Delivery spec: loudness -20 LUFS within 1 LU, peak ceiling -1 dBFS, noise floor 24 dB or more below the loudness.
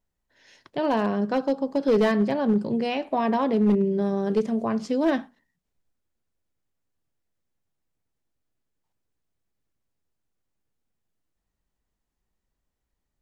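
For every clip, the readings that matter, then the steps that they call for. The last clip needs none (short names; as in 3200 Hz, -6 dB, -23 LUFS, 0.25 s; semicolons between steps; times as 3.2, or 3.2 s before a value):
clipped 0.4%; flat tops at -14.5 dBFS; loudness -24.0 LUFS; peak -14.5 dBFS; loudness target -20.0 LUFS
-> clip repair -14.5 dBFS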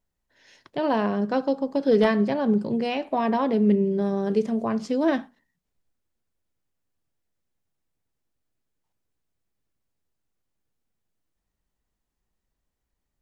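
clipped 0.0%; loudness -24.0 LUFS; peak -8.0 dBFS; loudness target -20.0 LUFS
-> gain +4 dB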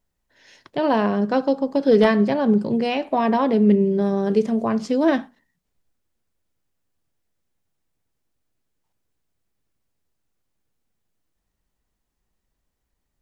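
loudness -20.0 LUFS; peak -4.0 dBFS; noise floor -77 dBFS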